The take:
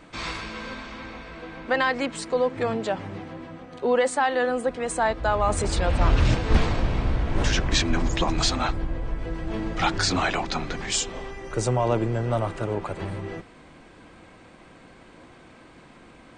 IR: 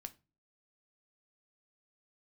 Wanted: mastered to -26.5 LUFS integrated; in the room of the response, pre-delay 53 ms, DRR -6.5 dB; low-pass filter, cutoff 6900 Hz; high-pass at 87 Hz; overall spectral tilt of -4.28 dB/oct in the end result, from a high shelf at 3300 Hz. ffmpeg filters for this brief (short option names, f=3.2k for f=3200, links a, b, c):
-filter_complex "[0:a]highpass=87,lowpass=6.9k,highshelf=f=3.3k:g=-4.5,asplit=2[a][b];[1:a]atrim=start_sample=2205,adelay=53[c];[b][c]afir=irnorm=-1:irlink=0,volume=11.5dB[d];[a][d]amix=inputs=2:normalize=0,volume=-7dB"